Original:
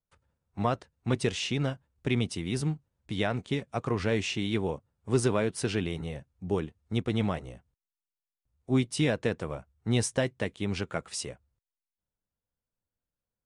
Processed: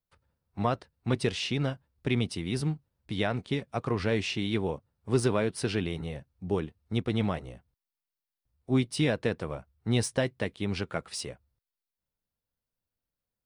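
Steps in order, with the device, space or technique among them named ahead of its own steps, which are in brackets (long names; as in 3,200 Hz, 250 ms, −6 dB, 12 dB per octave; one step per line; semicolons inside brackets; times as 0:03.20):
exciter from parts (in parallel at −5.5 dB: high-pass filter 4,600 Hz 24 dB per octave + soft clipping −30 dBFS, distortion −14 dB + high-pass filter 3,700 Hz 24 dB per octave)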